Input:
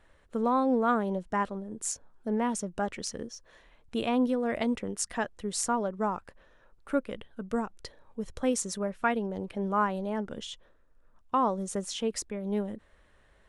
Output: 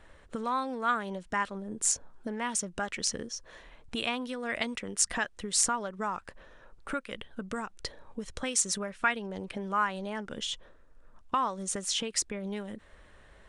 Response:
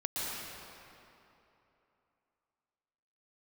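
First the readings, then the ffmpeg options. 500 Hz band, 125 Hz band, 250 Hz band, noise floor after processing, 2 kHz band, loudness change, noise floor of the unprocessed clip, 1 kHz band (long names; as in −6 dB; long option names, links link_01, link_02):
−6.5 dB, −4.5 dB, −7.0 dB, −57 dBFS, +4.5 dB, −1.0 dB, −62 dBFS, −1.5 dB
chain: -filter_complex "[0:a]acrossover=split=1300[link_01][link_02];[link_01]acompressor=threshold=-41dB:ratio=10[link_03];[link_03][link_02]amix=inputs=2:normalize=0,aresample=22050,aresample=44100,volume=6.5dB"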